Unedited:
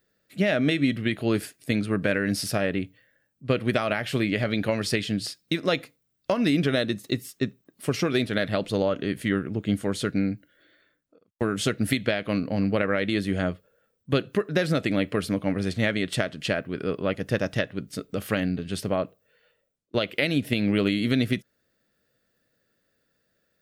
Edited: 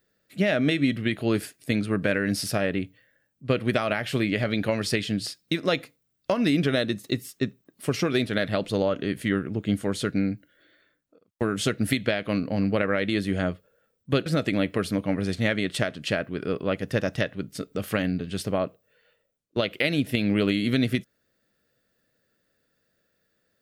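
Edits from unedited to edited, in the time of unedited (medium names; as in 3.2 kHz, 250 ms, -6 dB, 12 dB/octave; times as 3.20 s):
14.26–14.64 s: delete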